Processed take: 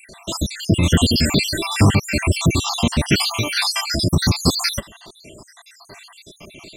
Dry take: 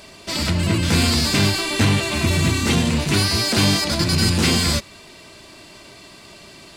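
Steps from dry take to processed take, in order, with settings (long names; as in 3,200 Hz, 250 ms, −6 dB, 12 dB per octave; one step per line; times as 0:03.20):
time-frequency cells dropped at random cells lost 72%
0:03.22–0:04.00: notch comb filter 190 Hz
level +5.5 dB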